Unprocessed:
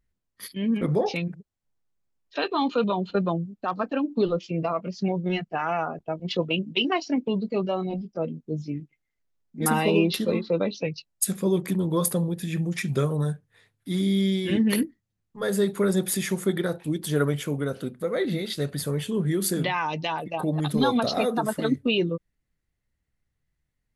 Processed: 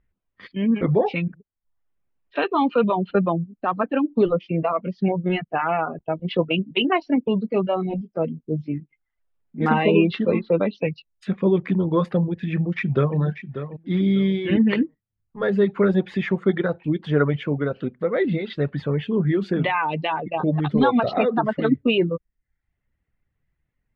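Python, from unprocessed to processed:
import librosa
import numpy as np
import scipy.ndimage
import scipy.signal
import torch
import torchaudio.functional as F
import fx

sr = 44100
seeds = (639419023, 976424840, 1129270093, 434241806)

y = fx.echo_throw(x, sr, start_s=12.53, length_s=0.64, ms=590, feedback_pct=30, wet_db=-11.0)
y = scipy.signal.sosfilt(scipy.signal.butter(4, 2800.0, 'lowpass', fs=sr, output='sos'), y)
y = fx.dereverb_blind(y, sr, rt60_s=0.52)
y = y * 10.0 ** (5.0 / 20.0)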